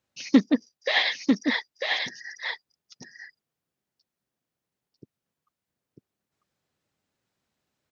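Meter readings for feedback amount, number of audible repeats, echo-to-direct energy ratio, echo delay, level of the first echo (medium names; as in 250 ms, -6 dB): no regular repeats, 1, -4.0 dB, 946 ms, -4.0 dB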